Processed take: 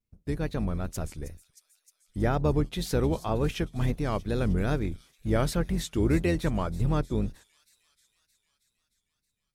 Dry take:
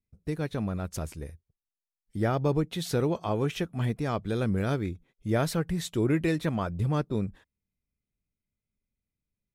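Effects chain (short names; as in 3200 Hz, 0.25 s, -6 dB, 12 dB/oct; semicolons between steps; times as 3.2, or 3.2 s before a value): octaver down 2 oct, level -2 dB; thin delay 0.313 s, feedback 69%, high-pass 5000 Hz, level -11 dB; wow and flutter 100 cents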